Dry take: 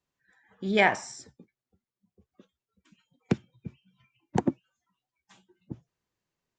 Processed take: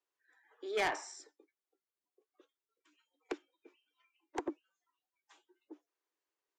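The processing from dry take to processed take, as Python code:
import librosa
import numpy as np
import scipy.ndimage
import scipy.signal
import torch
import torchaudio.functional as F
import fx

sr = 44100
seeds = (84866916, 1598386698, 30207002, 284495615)

y = scipy.signal.sosfilt(scipy.signal.cheby1(6, 3, 290.0, 'highpass', fs=sr, output='sos'), x)
y = 10.0 ** (-23.5 / 20.0) * np.tanh(y / 10.0 ** (-23.5 / 20.0))
y = y * librosa.db_to_amplitude(-4.0)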